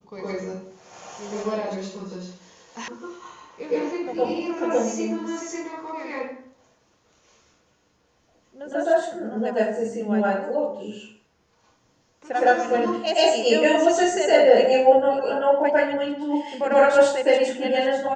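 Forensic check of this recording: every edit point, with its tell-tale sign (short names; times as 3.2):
2.88 sound cut off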